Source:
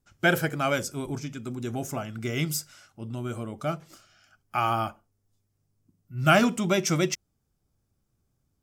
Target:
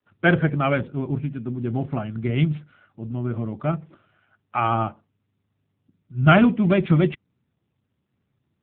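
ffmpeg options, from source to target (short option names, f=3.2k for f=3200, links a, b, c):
-af "adynamicequalizer=threshold=0.0126:dfrequency=140:dqfactor=0.85:tfrequency=140:tqfactor=0.85:attack=5:release=100:ratio=0.375:range=3:mode=boostabove:tftype=bell,adynamicsmooth=sensitivity=3:basefreq=2.5k,volume=4dB" -ar 8000 -c:a libopencore_amrnb -b:a 7400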